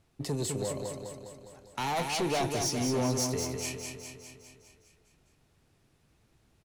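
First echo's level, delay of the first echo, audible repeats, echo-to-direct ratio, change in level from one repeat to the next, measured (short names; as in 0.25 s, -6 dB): -5.0 dB, 0.204 s, 7, -3.0 dB, -4.5 dB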